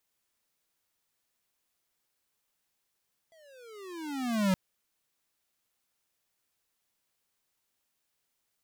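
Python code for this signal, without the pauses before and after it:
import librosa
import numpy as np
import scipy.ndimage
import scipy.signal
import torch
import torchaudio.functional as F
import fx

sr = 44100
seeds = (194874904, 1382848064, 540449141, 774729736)

y = fx.riser_tone(sr, length_s=1.22, level_db=-24.0, wave='square', hz=670.0, rise_st=-22.5, swell_db=35.5)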